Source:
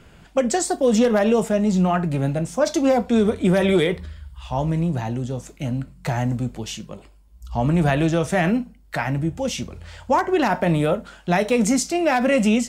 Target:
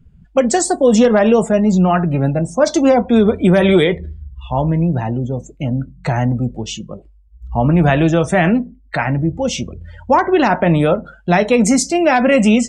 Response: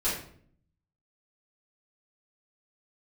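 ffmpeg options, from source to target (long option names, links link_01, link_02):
-filter_complex "[0:a]asplit=2[link_01][link_02];[1:a]atrim=start_sample=2205,afade=type=out:start_time=0.43:duration=0.01,atrim=end_sample=19404,lowshelf=frequency=140:gain=-7[link_03];[link_02][link_03]afir=irnorm=-1:irlink=0,volume=-32dB[link_04];[link_01][link_04]amix=inputs=2:normalize=0,afftdn=noise_reduction=28:noise_floor=-38,volume=6dB"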